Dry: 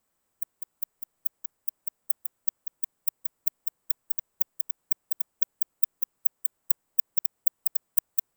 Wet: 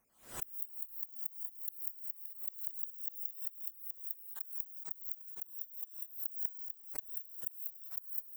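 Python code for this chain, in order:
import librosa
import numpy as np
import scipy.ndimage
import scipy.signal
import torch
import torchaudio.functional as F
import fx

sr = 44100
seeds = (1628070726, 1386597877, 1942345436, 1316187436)

p1 = fx.spec_dropout(x, sr, seeds[0], share_pct=32)
p2 = fx.wow_flutter(p1, sr, seeds[1], rate_hz=2.1, depth_cents=18.0)
p3 = fx.gate_flip(p2, sr, shuts_db=-25.0, range_db=-30)
p4 = p3 + fx.echo_tape(p3, sr, ms=83, feedback_pct=75, wet_db=-10.0, lp_hz=2700.0, drive_db=22.0, wow_cents=16, dry=0)
p5 = fx.rev_gated(p4, sr, seeds[2], gate_ms=240, shape='rising', drr_db=3.0)
p6 = fx.pre_swell(p5, sr, db_per_s=130.0)
y = F.gain(torch.from_numpy(p6), 2.5).numpy()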